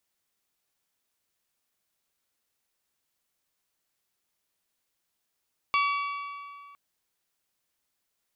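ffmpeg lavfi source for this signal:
ffmpeg -f lavfi -i "aevalsrc='0.0794*pow(10,-3*t/2.28)*sin(2*PI*1140*t)+0.0473*pow(10,-3*t/1.852)*sin(2*PI*2280*t)+0.0282*pow(10,-3*t/1.753)*sin(2*PI*2736*t)+0.0168*pow(10,-3*t/1.64)*sin(2*PI*3420*t)+0.01*pow(10,-3*t/1.504)*sin(2*PI*4560*t)':duration=1.01:sample_rate=44100" out.wav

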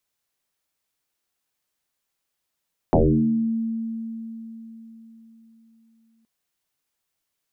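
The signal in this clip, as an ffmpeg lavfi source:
ffmpeg -f lavfi -i "aevalsrc='0.237*pow(10,-3*t/4.13)*sin(2*PI*226*t+8.1*pow(10,-3*t/0.78)*sin(2*PI*0.36*226*t))':duration=3.32:sample_rate=44100" out.wav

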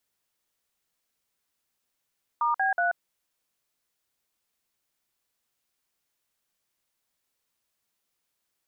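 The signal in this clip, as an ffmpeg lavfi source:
ffmpeg -f lavfi -i "aevalsrc='0.0596*clip(min(mod(t,0.185),0.134-mod(t,0.185))/0.002,0,1)*(eq(floor(t/0.185),0)*(sin(2*PI*941*mod(t,0.185))+sin(2*PI*1209*mod(t,0.185)))+eq(floor(t/0.185),1)*(sin(2*PI*770*mod(t,0.185))+sin(2*PI*1633*mod(t,0.185)))+eq(floor(t/0.185),2)*(sin(2*PI*697*mod(t,0.185))+sin(2*PI*1477*mod(t,0.185))))':duration=0.555:sample_rate=44100" out.wav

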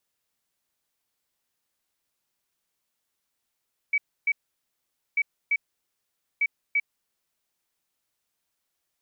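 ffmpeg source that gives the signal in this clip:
ffmpeg -f lavfi -i "aevalsrc='0.106*sin(2*PI*2280*t)*clip(min(mod(mod(t,1.24),0.34),0.05-mod(mod(t,1.24),0.34))/0.005,0,1)*lt(mod(t,1.24),0.68)':duration=3.72:sample_rate=44100" out.wav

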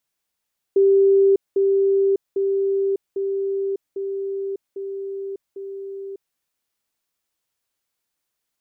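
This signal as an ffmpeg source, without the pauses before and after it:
ffmpeg -f lavfi -i "aevalsrc='pow(10,(-11.5-3*floor(t/0.8))/20)*sin(2*PI*392*t)*clip(min(mod(t,0.8),0.6-mod(t,0.8))/0.005,0,1)':duration=5.6:sample_rate=44100" out.wav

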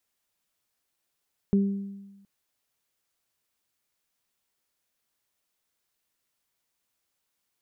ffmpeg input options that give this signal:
ffmpeg -f lavfi -i "aevalsrc='0.141*pow(10,-3*t/1.16)*sin(2*PI*198*t)+0.0501*pow(10,-3*t/0.69)*sin(2*PI*396*t)':duration=0.72:sample_rate=44100" out.wav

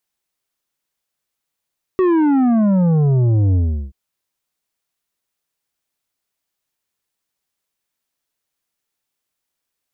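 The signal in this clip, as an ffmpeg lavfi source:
ffmpeg -f lavfi -i "aevalsrc='0.237*clip((1.93-t)/0.37,0,1)*tanh(2.66*sin(2*PI*380*1.93/log(65/380)*(exp(log(65/380)*t/1.93)-1)))/tanh(2.66)':duration=1.93:sample_rate=44100" out.wav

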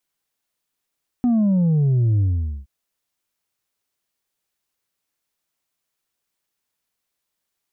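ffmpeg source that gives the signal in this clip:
ffmpeg -f lavfi -i "aevalsrc='0.178*clip((1.42-t)/0.46,0,1)*tanh(1.41*sin(2*PI*250*1.42/log(65/250)*(exp(log(65/250)*t/1.42)-1)))/tanh(1.41)':duration=1.42:sample_rate=44100" out.wav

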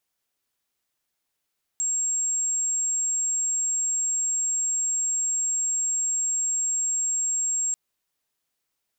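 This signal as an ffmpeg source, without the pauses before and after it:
ffmpeg -f lavfi -i "aevalsrc='0.075*sin(2*PI*7540*t)':duration=5.94:sample_rate=44100" out.wav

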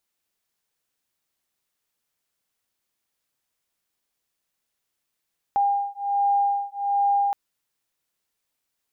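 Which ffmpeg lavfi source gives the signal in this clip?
ffmpeg -f lavfi -i "aevalsrc='0.0708*(sin(2*PI*804*t)+sin(2*PI*805.3*t))':duration=1.77:sample_rate=44100" out.wav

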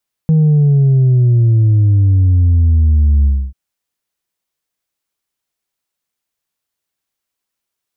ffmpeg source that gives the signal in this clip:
ffmpeg -f lavfi -i "aevalsrc='0.422*clip((3.24-t)/0.28,0,1)*tanh(1.26*sin(2*PI*160*3.24/log(65/160)*(exp(log(65/160)*t/3.24)-1)))/tanh(1.26)':duration=3.24:sample_rate=44100" out.wav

